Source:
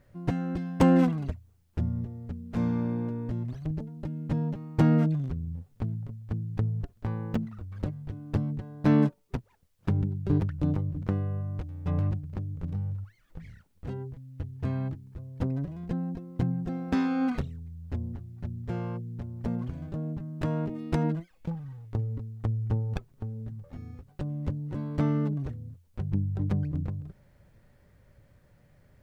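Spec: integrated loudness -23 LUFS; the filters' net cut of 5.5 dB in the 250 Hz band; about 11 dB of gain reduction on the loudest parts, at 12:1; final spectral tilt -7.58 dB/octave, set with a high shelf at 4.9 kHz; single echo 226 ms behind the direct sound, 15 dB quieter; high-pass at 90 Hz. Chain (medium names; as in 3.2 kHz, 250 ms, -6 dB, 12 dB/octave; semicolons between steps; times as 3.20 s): high-pass 90 Hz; peaking EQ 250 Hz -7.5 dB; treble shelf 4.9 kHz +8.5 dB; compression 12:1, threshold -31 dBFS; delay 226 ms -15 dB; trim +15.5 dB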